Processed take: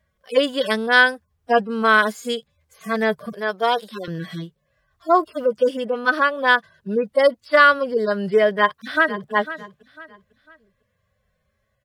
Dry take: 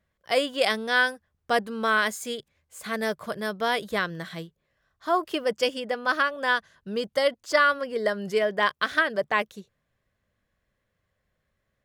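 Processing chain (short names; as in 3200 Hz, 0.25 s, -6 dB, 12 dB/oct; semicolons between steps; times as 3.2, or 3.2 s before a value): median-filter separation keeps harmonic; 3.33–4.08 HPF 370 Hz 12 dB/oct; 8.58–9.32 echo throw 0.5 s, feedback 35%, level -14 dB; gain +8 dB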